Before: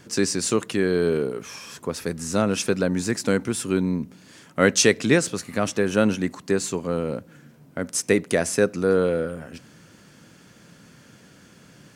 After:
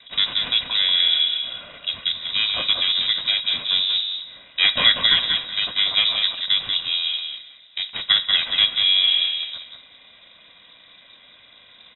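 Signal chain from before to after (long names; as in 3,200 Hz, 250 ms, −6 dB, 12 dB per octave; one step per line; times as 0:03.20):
lower of the sound and its delayed copy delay 2.2 ms
on a send: repeating echo 188 ms, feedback 16%, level −5 dB
on the sum: four-comb reverb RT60 0.4 s, combs from 33 ms, DRR 14.5 dB
voice inversion scrambler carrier 3,800 Hz
level +2.5 dB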